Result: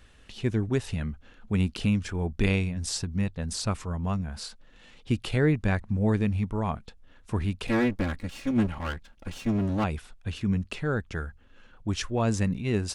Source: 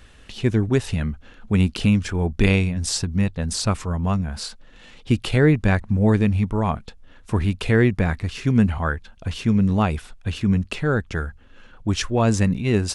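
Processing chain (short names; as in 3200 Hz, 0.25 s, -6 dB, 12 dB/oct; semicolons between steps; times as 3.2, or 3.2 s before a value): 7.67–9.84 minimum comb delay 3.6 ms; gain -7 dB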